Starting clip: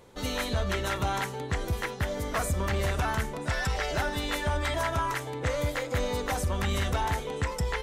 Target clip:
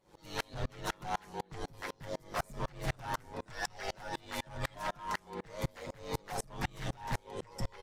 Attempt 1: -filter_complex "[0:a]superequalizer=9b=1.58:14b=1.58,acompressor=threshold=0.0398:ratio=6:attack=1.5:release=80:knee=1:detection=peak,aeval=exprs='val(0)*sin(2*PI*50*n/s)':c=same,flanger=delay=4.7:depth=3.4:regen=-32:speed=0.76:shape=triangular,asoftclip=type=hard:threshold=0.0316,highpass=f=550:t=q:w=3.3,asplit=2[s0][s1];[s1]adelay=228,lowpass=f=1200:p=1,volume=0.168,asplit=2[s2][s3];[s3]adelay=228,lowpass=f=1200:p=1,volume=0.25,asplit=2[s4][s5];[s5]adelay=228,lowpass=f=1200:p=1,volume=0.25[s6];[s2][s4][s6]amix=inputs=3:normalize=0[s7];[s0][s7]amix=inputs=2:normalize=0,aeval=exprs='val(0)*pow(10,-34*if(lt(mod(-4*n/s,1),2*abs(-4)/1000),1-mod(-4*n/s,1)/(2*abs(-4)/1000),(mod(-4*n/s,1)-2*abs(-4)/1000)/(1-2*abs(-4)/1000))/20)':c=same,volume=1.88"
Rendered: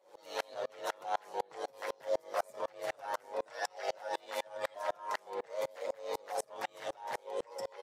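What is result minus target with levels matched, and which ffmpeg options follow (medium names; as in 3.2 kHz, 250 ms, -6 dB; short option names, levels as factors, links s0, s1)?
compression: peak gain reduction +6.5 dB; 500 Hz band +5.0 dB
-filter_complex "[0:a]superequalizer=9b=1.58:14b=1.58,aeval=exprs='val(0)*sin(2*PI*50*n/s)':c=same,flanger=delay=4.7:depth=3.4:regen=-32:speed=0.76:shape=triangular,asoftclip=type=hard:threshold=0.0316,asplit=2[s0][s1];[s1]adelay=228,lowpass=f=1200:p=1,volume=0.168,asplit=2[s2][s3];[s3]adelay=228,lowpass=f=1200:p=1,volume=0.25,asplit=2[s4][s5];[s5]adelay=228,lowpass=f=1200:p=1,volume=0.25[s6];[s2][s4][s6]amix=inputs=3:normalize=0[s7];[s0][s7]amix=inputs=2:normalize=0,aeval=exprs='val(0)*pow(10,-34*if(lt(mod(-4*n/s,1),2*abs(-4)/1000),1-mod(-4*n/s,1)/(2*abs(-4)/1000),(mod(-4*n/s,1)-2*abs(-4)/1000)/(1-2*abs(-4)/1000))/20)':c=same,volume=1.88"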